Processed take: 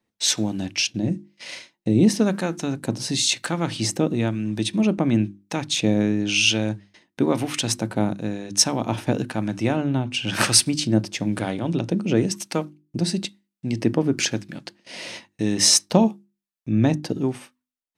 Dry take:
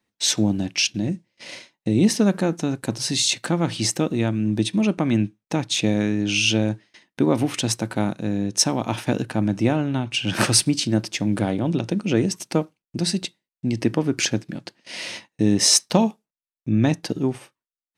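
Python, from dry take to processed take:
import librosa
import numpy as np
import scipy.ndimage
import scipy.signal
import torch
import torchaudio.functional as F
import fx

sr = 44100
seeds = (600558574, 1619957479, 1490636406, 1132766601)

y = fx.hum_notches(x, sr, base_hz=50, count=7)
y = fx.harmonic_tremolo(y, sr, hz=1.0, depth_pct=50, crossover_hz=870.0)
y = y * librosa.db_to_amplitude(2.0)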